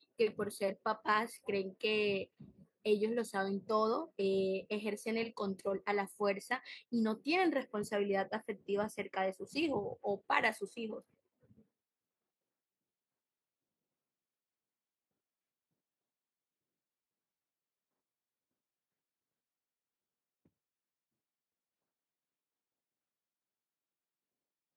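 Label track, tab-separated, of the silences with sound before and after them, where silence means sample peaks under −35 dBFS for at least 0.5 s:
2.220000	2.860000	silence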